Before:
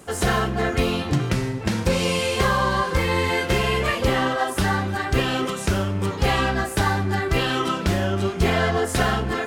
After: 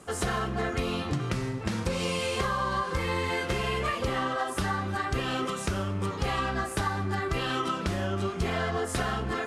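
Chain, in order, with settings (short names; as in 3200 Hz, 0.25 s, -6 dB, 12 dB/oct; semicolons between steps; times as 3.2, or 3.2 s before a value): LPF 12000 Hz 24 dB/oct; bell 1200 Hz +6.5 dB 0.22 oct; compressor, threshold -20 dBFS, peak gain reduction 7 dB; gain -5 dB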